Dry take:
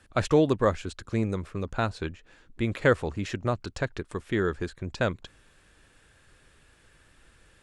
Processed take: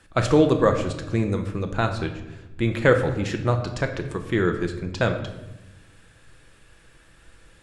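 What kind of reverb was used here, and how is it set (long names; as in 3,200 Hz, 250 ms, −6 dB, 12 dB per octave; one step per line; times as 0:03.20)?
rectangular room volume 430 cubic metres, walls mixed, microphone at 0.7 metres
level +3.5 dB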